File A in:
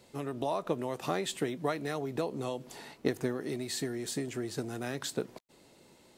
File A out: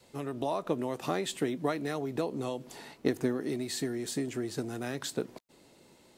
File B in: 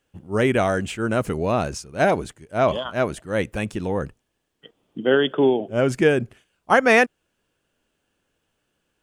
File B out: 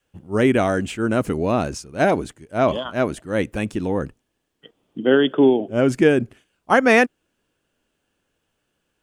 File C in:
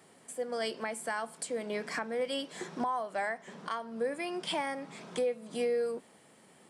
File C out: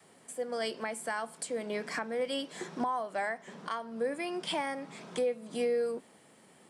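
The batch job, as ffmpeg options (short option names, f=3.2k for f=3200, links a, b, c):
-af "adynamicequalizer=threshold=0.0141:dfrequency=280:dqfactor=1.9:tfrequency=280:tqfactor=1.9:attack=5:release=100:ratio=0.375:range=3:mode=boostabove:tftype=bell"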